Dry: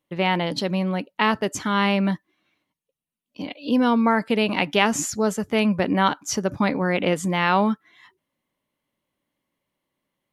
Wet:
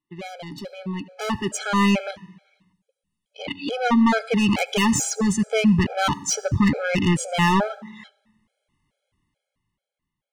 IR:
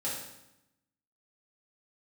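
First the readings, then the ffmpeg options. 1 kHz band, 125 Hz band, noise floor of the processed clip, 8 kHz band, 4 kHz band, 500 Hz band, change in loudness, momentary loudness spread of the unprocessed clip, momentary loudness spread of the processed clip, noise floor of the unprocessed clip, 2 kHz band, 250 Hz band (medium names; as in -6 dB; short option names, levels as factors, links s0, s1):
-2.0 dB, +3.0 dB, under -85 dBFS, +4.0 dB, -0.5 dB, -2.5 dB, +0.5 dB, 6 LU, 17 LU, under -85 dBFS, -1.0 dB, +1.0 dB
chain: -filter_complex "[0:a]aresample=22050,aresample=44100,asubboost=boost=6:cutoff=120,asoftclip=type=tanh:threshold=0.0891,asplit=2[s0][s1];[1:a]atrim=start_sample=2205,adelay=70[s2];[s1][s2]afir=irnorm=-1:irlink=0,volume=0.0631[s3];[s0][s3]amix=inputs=2:normalize=0,dynaudnorm=f=190:g=13:m=5.31,afftfilt=real='re*gt(sin(2*PI*2.3*pts/sr)*(1-2*mod(floor(b*sr/1024/430),2)),0)':imag='im*gt(sin(2*PI*2.3*pts/sr)*(1-2*mod(floor(b*sr/1024/430),2)),0)':win_size=1024:overlap=0.75,volume=0.531"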